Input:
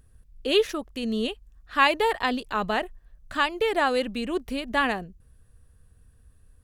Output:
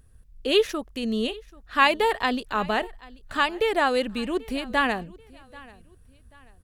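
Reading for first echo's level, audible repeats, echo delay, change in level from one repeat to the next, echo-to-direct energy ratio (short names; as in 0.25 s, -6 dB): -22.5 dB, 2, 0.786 s, -9.0 dB, -22.0 dB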